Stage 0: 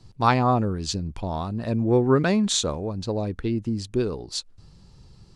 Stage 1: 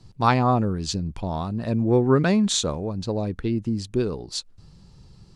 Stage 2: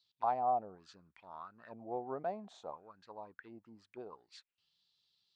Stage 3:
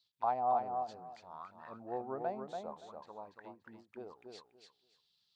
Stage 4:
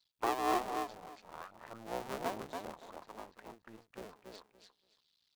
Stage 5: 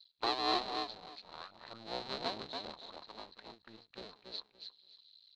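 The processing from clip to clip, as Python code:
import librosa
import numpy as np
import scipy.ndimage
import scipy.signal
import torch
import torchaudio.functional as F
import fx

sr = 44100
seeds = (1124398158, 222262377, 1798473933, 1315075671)

y1 = fx.peak_eq(x, sr, hz=170.0, db=3.0, octaves=0.77)
y2 = fx.auto_wah(y1, sr, base_hz=720.0, top_hz=3900.0, q=6.3, full_db=-19.5, direction='down')
y2 = F.gain(torch.from_numpy(y2), -4.5).numpy()
y3 = fx.echo_feedback(y2, sr, ms=285, feedback_pct=20, wet_db=-5.0)
y3 = fx.end_taper(y3, sr, db_per_s=240.0)
y4 = fx.cycle_switch(y3, sr, every=2, mode='muted')
y4 = F.gain(torch.from_numpy(y4), 2.5).numpy()
y5 = fx.lowpass_res(y4, sr, hz=4100.0, q=15.0)
y5 = F.gain(torch.from_numpy(y5), -2.5).numpy()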